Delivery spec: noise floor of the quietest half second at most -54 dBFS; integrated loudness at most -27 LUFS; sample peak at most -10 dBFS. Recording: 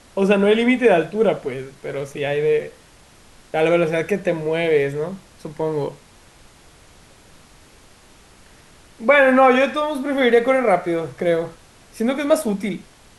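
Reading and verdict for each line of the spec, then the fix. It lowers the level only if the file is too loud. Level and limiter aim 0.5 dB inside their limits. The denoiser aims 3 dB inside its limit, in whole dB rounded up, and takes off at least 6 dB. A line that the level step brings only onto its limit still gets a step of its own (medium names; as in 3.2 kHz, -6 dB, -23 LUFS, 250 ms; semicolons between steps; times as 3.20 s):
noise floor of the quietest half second -49 dBFS: fail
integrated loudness -19.0 LUFS: fail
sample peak -4.0 dBFS: fail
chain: trim -8.5 dB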